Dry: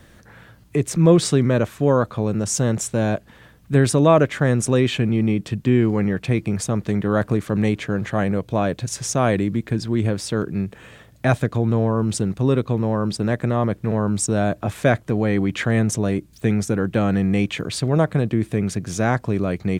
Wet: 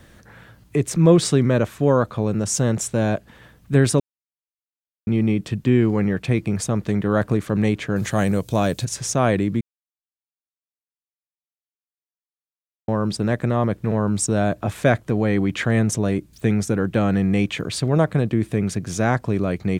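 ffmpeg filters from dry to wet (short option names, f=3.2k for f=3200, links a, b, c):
-filter_complex "[0:a]asettb=1/sr,asplit=3[a][b][c];[a]atrim=end=7.964[d];[b]atrim=start=7.96:end=8.85,asetpts=PTS-STARTPTS,afade=t=in:d=0.004:c=qsin,afade=t=out:st=0.886:d=0.004:c=qsin,bass=f=250:g=2,treble=f=4k:g=15[e];[c]atrim=start=8.846[f];[d][e]acrossfade=d=0.004:c1=hsin:c2=qsin[g];[g][f]acrossfade=d=0.004:c1=qsin:c2=hsin,asplit=5[h][i][j][k][l];[h]atrim=end=4,asetpts=PTS-STARTPTS,afade=t=out:st=3.996:d=0.004:c=hsin[m];[i]atrim=start=4:end=5.07,asetpts=PTS-STARTPTS,volume=0[n];[j]atrim=start=5.07:end=9.61,asetpts=PTS-STARTPTS,afade=t=in:d=0.004:c=hsin,afade=t=out:st=4.536:d=0.004:c=hsin[o];[k]atrim=start=9.61:end=12.88,asetpts=PTS-STARTPTS,volume=0[p];[l]atrim=start=12.88,asetpts=PTS-STARTPTS,afade=t=in:d=0.004:c=hsin[q];[m][n][o][p][q]concat=n=5:v=0:a=1"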